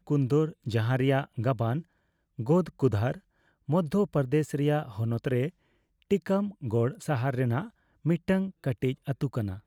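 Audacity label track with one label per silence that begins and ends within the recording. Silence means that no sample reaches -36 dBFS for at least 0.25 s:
1.810000	2.390000	silence
3.170000	3.690000	silence
5.490000	6.110000	silence
7.660000	8.050000	silence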